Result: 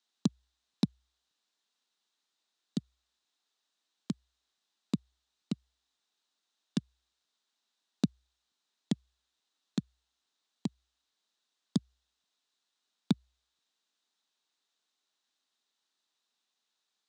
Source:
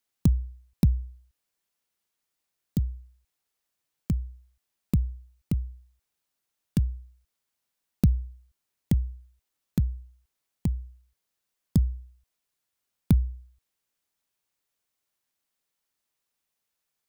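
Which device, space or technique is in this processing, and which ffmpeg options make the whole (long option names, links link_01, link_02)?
television speaker: -af "highpass=frequency=220:width=0.5412,highpass=frequency=220:width=1.3066,equalizer=frequency=350:width_type=q:width=4:gain=-3,equalizer=frequency=530:width_type=q:width=4:gain=-7,equalizer=frequency=2200:width_type=q:width=4:gain=-5,equalizer=frequency=3800:width_type=q:width=4:gain=9,lowpass=frequency=7400:width=0.5412,lowpass=frequency=7400:width=1.3066,volume=1.5dB"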